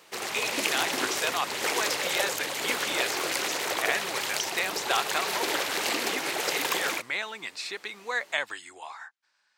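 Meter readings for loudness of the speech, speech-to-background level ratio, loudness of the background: -32.0 LUFS, -3.5 dB, -28.5 LUFS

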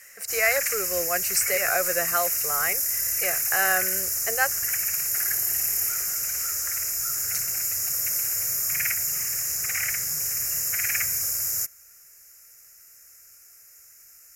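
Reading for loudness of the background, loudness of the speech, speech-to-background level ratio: -23.5 LUFS, -27.0 LUFS, -3.5 dB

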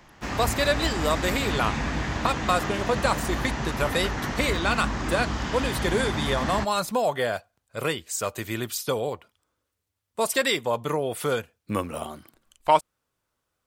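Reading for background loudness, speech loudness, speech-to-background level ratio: -29.5 LUFS, -27.0 LUFS, 2.5 dB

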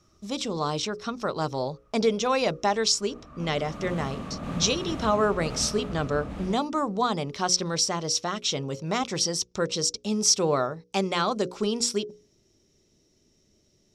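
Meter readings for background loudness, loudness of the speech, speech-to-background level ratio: -37.0 LUFS, -26.5 LUFS, 10.5 dB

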